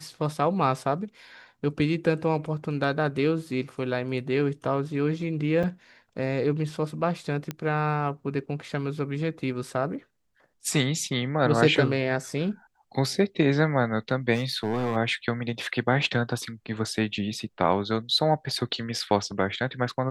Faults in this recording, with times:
0:05.63–0:05.64: drop-out 6 ms
0:07.51: click −16 dBFS
0:14.34–0:14.97: clipping −22.5 dBFS

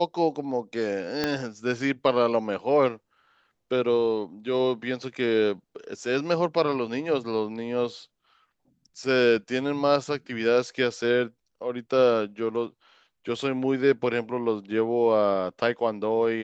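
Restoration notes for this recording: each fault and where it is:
0:01.24: click −11 dBFS

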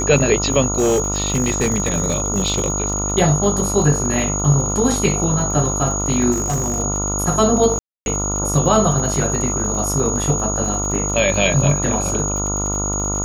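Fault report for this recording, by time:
mains buzz 50 Hz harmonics 28 −24 dBFS
surface crackle 80 per second −26 dBFS
whistle 6,700 Hz −22 dBFS
0:00.74–0:02.70: clipping −12.5 dBFS
0:06.31–0:06.80: clipping −16 dBFS
0:07.79–0:08.06: drop-out 271 ms

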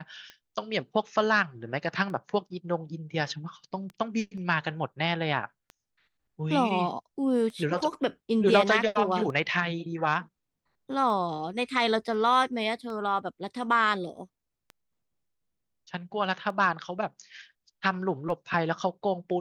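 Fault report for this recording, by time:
scratch tick 33 1/3 rpm −28 dBFS

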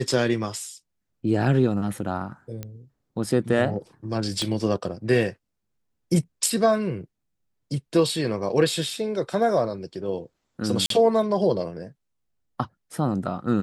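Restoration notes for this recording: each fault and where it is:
0:02.63: click −19 dBFS
0:04.42: click −15 dBFS
0:10.86–0:10.90: drop-out 43 ms

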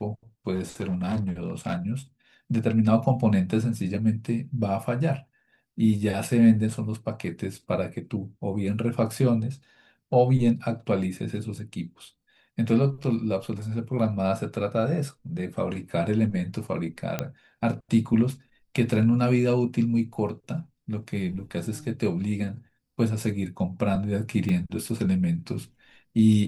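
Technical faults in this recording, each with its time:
0:00.54–0:01.77: clipping −23 dBFS
0:17.19: click −12 dBFS
0:24.49: drop-out 2.4 ms

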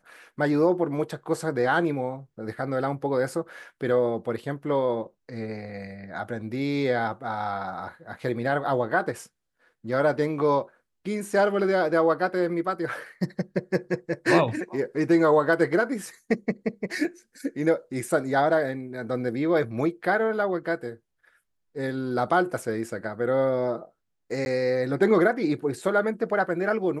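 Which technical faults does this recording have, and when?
0:24.45–0:24.46: drop-out 11 ms

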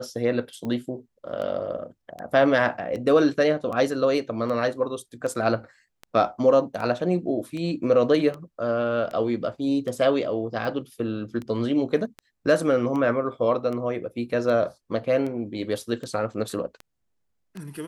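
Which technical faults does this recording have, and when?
scratch tick 78 rpm −22 dBFS

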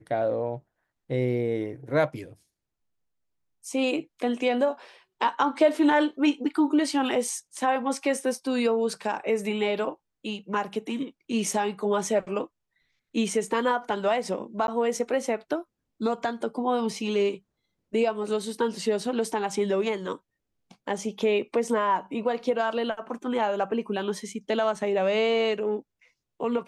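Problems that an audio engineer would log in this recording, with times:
0:14.67–0:14.68: drop-out 11 ms

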